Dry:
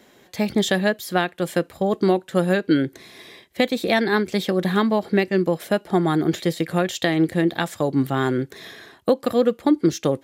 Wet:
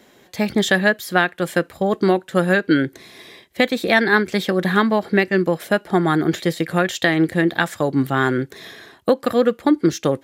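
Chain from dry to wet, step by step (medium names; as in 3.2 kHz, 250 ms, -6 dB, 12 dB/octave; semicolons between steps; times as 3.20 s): dynamic bell 1.6 kHz, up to +7 dB, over -38 dBFS, Q 1.5; trim +1.5 dB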